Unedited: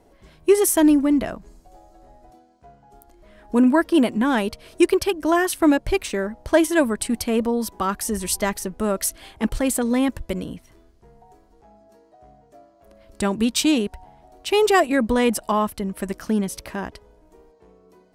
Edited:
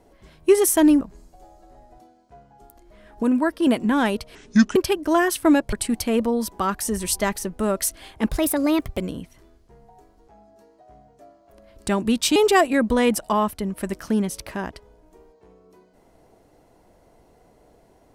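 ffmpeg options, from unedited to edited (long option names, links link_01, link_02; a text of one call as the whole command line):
ffmpeg -i in.wav -filter_complex "[0:a]asplit=10[link_01][link_02][link_03][link_04][link_05][link_06][link_07][link_08][link_09][link_10];[link_01]atrim=end=1.012[link_11];[link_02]atrim=start=1.328:end=3.552[link_12];[link_03]atrim=start=3.548:end=3.992,asetpts=PTS-STARTPTS,volume=-4dB[link_13];[link_04]atrim=start=3.988:end=4.674[link_14];[link_05]atrim=start=4.67:end=4.93,asetpts=PTS-STARTPTS,asetrate=28224,aresample=44100[link_15];[link_06]atrim=start=4.926:end=5.902[link_16];[link_07]atrim=start=6.928:end=9.514[link_17];[link_08]atrim=start=9.51:end=10.31,asetpts=PTS-STARTPTS,asetrate=52479,aresample=44100,atrim=end_sample=29647,asetpts=PTS-STARTPTS[link_18];[link_09]atrim=start=10.306:end=13.692[link_19];[link_10]atrim=start=14.548[link_20];[link_11][link_12]acrossfade=duration=0.004:curve1=hsin:curve2=hsin[link_21];[link_21][link_13]acrossfade=duration=0.004:curve1=hsin:curve2=hsin[link_22];[link_22][link_14]acrossfade=duration=0.004:curve1=hsin:curve2=hsin[link_23];[link_23][link_15]acrossfade=duration=0.004:curve1=hsin:curve2=hsin[link_24];[link_24][link_16]acrossfade=duration=0.004:curve1=hsin:curve2=hsin[link_25];[link_25][link_17]acrossfade=duration=0.004:curve1=hsin:curve2=hsin[link_26];[link_26][link_18]acrossfade=duration=0.004:curve1=hsin:curve2=hsin[link_27];[link_27][link_19]acrossfade=duration=0.004:curve1=hsin:curve2=hsin[link_28];[link_28][link_20]acrossfade=duration=0.004:curve1=hsin:curve2=hsin" out.wav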